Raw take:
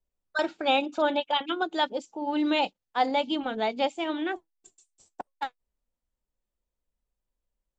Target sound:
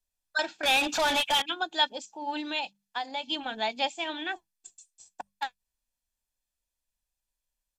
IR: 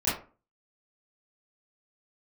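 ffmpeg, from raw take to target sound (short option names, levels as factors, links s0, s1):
-filter_complex "[0:a]highshelf=f=6600:g=-10.5,bandreject=f=50:t=h:w=6,bandreject=f=100:t=h:w=6,bandreject=f=150:t=h:w=6,bandreject=f=200:t=h:w=6,aecho=1:1:1.2:0.42,asettb=1/sr,asplit=3[s0][s1][s2];[s0]atrim=end=2.404[s3];[s1]atrim=start=2.4:end=3.29,asetpts=PTS-STARTPTS,afade=t=in:d=0.004:c=qsin,afade=t=out:st=0.886:d=0.004:c=qsin,acompressor=threshold=0.0447:ratio=10[s4];[s2]atrim=start=3.286[s5];[s3][s4]acrossfade=d=0.004:c1=hsin:c2=qsin[s6];[s6][s5]acrossfade=d=0.004:c1=qsin:c2=hsin,crystalizer=i=10:c=0,asettb=1/sr,asplit=3[s7][s8][s9];[s7]atrim=end=0.634[s10];[s8]atrim=start=0.63:end=1.42,asetpts=PTS-STARTPTS,afade=t=in:d=0.004:c=qsin,afade=t=out:st=0.786:d=0.004:c=qsin,asplit=2[s11][s12];[s12]highpass=f=720:p=1,volume=22.4,asoftclip=type=tanh:threshold=0.251[s13];[s11][s13]amix=inputs=2:normalize=0,lowpass=f=6100:p=1,volume=0.501[s14];[s9]atrim=start=1.416[s15];[s10][s14]acrossfade=d=0.004:c1=hsin:c2=qsin[s16];[s16][s15]acrossfade=d=0.004:c1=qsin:c2=hsin,aresample=32000,aresample=44100,volume=0.398"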